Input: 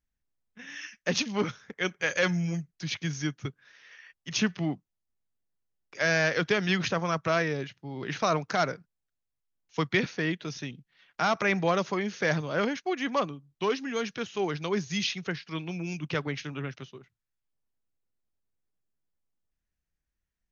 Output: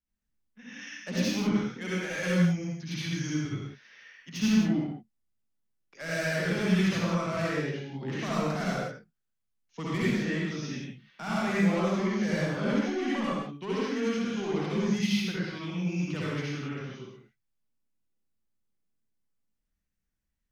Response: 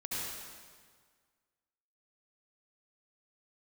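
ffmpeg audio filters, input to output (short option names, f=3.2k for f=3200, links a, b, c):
-filter_complex "[0:a]equalizer=f=220:t=o:w=0.27:g=11,acrossover=split=250[a][b];[b]asoftclip=type=tanh:threshold=-25.5dB[c];[a][c]amix=inputs=2:normalize=0[d];[1:a]atrim=start_sample=2205,afade=t=out:st=0.38:d=0.01,atrim=end_sample=17199,asetrate=52920,aresample=44100[e];[d][e]afir=irnorm=-1:irlink=0,volume=-1.5dB"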